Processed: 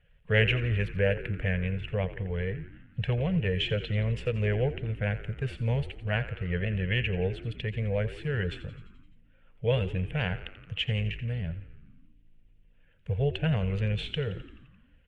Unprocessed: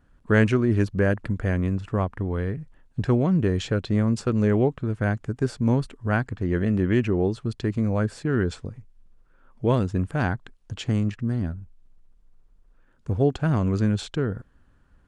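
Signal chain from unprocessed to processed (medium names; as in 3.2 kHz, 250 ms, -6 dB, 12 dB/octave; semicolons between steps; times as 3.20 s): coarse spectral quantiser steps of 15 dB; FFT filter 170 Hz 0 dB, 310 Hz -27 dB, 470 Hz +4 dB, 1.2 kHz -12 dB, 1.9 kHz +7 dB, 2.9 kHz +14 dB, 4.7 kHz -12 dB, 6.8 kHz -15 dB, 10 kHz -8 dB; frequency-shifting echo 86 ms, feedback 64%, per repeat -55 Hz, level -14 dB; trim -3.5 dB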